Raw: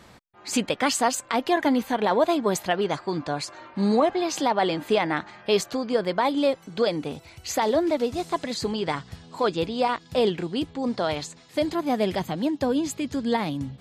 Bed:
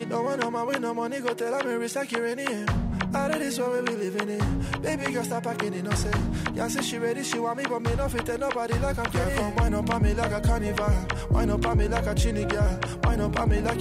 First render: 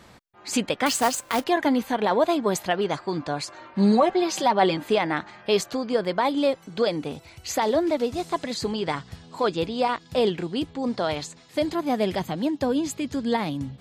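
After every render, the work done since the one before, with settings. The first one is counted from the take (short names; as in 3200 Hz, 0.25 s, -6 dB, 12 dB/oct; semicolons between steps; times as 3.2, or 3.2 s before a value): 0.86–1.44 companded quantiser 4-bit; 3.75–4.77 comb 5.3 ms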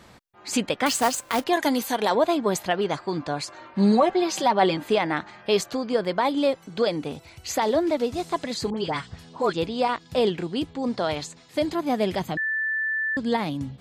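1.53–2.15 tone controls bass -5 dB, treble +13 dB; 8.7–9.53 dispersion highs, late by 75 ms, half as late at 1700 Hz; 12.37–13.17 bleep 1760 Hz -23 dBFS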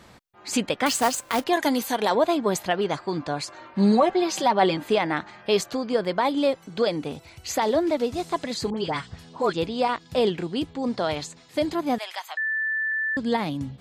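11.98–12.92 inverse Chebyshev high-pass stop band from 250 Hz, stop band 60 dB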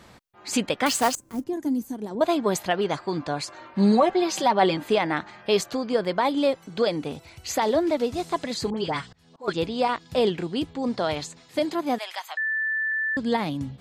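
1.15–2.21 EQ curve 320 Hz 0 dB, 530 Hz -16 dB, 2100 Hz -24 dB, 3800 Hz -26 dB, 6200 Hz -13 dB; 9.08–9.48 auto swell 0.428 s; 11.59–12.41 HPF 220 Hz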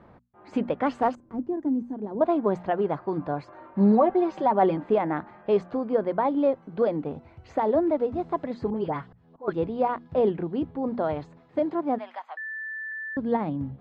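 LPF 1100 Hz 12 dB/oct; notches 60/120/180/240 Hz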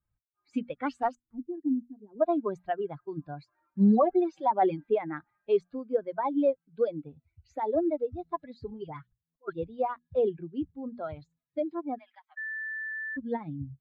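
per-bin expansion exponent 2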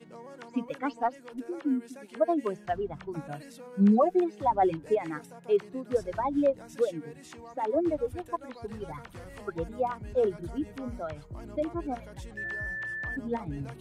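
add bed -19.5 dB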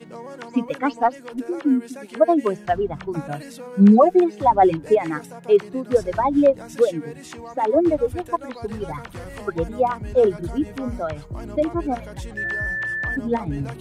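gain +9.5 dB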